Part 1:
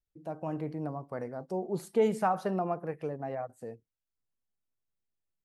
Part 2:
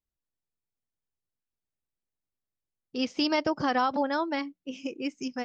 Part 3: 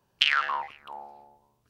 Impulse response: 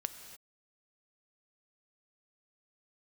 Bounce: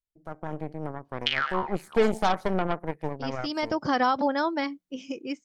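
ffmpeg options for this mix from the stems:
-filter_complex "[0:a]aeval=exprs='0.168*(cos(1*acos(clip(val(0)/0.168,-1,1)))-cos(1*PI/2))+0.0133*(cos(7*acos(clip(val(0)/0.168,-1,1)))-cos(7*PI/2))+0.0237*(cos(8*acos(clip(val(0)/0.168,-1,1)))-cos(8*PI/2))':c=same,volume=-0.5dB,asplit=2[a][b];[1:a]adelay=250,volume=-1.5dB[c];[2:a]lowpass=5.8k,adelay=1050,volume=-5.5dB[d];[b]apad=whole_len=251356[e];[c][e]sidechaincompress=threshold=-38dB:ratio=8:attack=16:release=595[f];[a][f][d]amix=inputs=3:normalize=0,bandreject=f=2.7k:w=13,dynaudnorm=f=350:g=7:m=4dB"

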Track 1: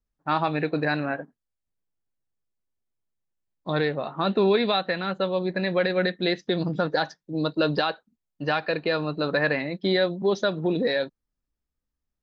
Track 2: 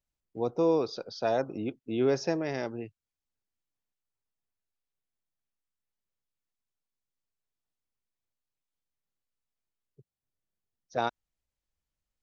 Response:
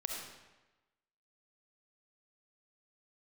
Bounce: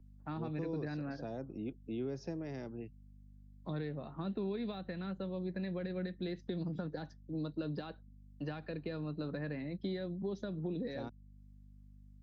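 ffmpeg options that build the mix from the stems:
-filter_complex "[0:a]deesser=0.75,aeval=exprs='val(0)+0.00316*(sin(2*PI*50*n/s)+sin(2*PI*2*50*n/s)/2+sin(2*PI*3*50*n/s)/3+sin(2*PI*4*50*n/s)/4+sin(2*PI*5*50*n/s)/5)':c=same,volume=-5.5dB[a];[1:a]volume=-4dB[b];[a][b]amix=inputs=2:normalize=0,acrossover=split=120|310[c][d][e];[c]acompressor=threshold=-52dB:ratio=4[f];[d]acompressor=threshold=-38dB:ratio=4[g];[e]acompressor=threshold=-49dB:ratio=4[h];[f][g][h]amix=inputs=3:normalize=0"

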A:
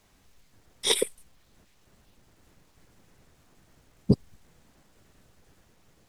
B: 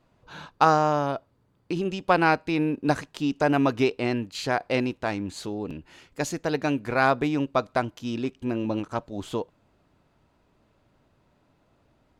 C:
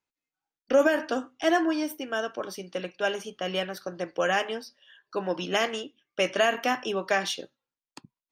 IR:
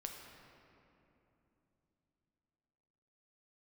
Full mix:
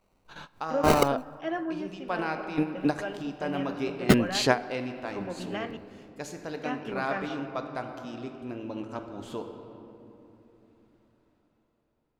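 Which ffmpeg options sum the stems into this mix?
-filter_complex "[0:a]agate=range=-8dB:threshold=-57dB:ratio=16:detection=peak,acrusher=samples=26:mix=1:aa=0.000001,volume=2dB,asplit=2[a][b];[1:a]dynaudnorm=f=190:g=13:m=13.5dB,volume=-3dB,asplit=2[c][d];[d]volume=-12.5dB[e];[2:a]lowpass=2.5k,equalizer=f=190:t=o:w=0.77:g=9,volume=-11dB,asplit=3[f][g][h];[f]atrim=end=5.77,asetpts=PTS-STARTPTS,afade=t=out:st=5.766:d=0.004:c=hsin[i];[g]atrim=start=5.77:end=6.63,asetpts=PTS-STARTPTS,volume=0[j];[h]atrim=start=6.63,asetpts=PTS-STARTPTS,afade=t=in:d=0.004:c=hsin[k];[i][j][k]concat=n=3:v=0:a=1,asplit=2[l][m];[m]volume=-8dB[n];[b]apad=whole_len=537794[o];[c][o]sidechaingate=range=-25dB:threshold=-56dB:ratio=16:detection=peak[p];[3:a]atrim=start_sample=2205[q];[e][n]amix=inputs=2:normalize=0[r];[r][q]afir=irnorm=-1:irlink=0[s];[a][p][l][s]amix=inputs=4:normalize=0,equalizer=f=110:t=o:w=1.3:g=-4"

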